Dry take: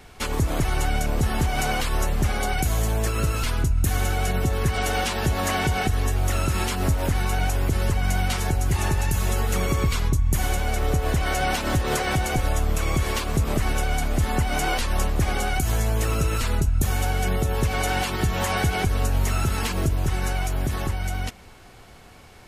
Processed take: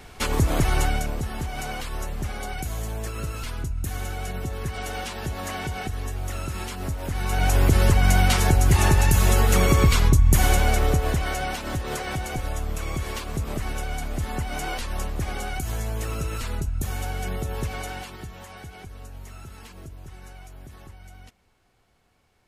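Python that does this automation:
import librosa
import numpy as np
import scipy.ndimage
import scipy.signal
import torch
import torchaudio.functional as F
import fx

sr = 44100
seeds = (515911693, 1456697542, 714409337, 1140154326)

y = fx.gain(x, sr, db=fx.line((0.81, 2.0), (1.26, -7.5), (7.04, -7.5), (7.57, 5.0), (10.64, 5.0), (11.55, -6.0), (17.65, -6.0), (18.47, -18.5)))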